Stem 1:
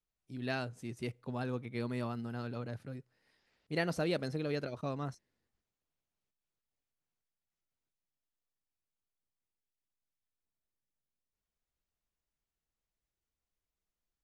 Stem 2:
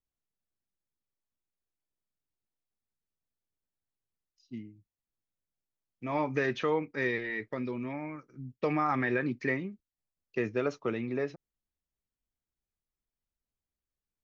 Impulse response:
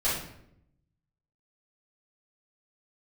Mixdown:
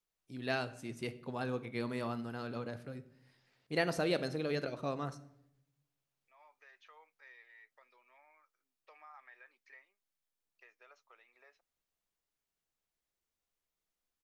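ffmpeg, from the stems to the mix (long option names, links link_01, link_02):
-filter_complex "[0:a]lowshelf=frequency=150:gain=-10,volume=1.5dB,asplit=3[link_01][link_02][link_03];[link_02]volume=-21.5dB[link_04];[1:a]highpass=frequency=700:width=0.5412,highpass=frequency=700:width=1.3066,acompressor=threshold=-51dB:ratio=1.5,adelay=250,volume=-16.5dB[link_05];[link_03]apad=whole_len=638821[link_06];[link_05][link_06]sidechaincompress=threshold=-50dB:ratio=8:attack=7.1:release=1430[link_07];[2:a]atrim=start_sample=2205[link_08];[link_04][link_08]afir=irnorm=-1:irlink=0[link_09];[link_01][link_07][link_09]amix=inputs=3:normalize=0"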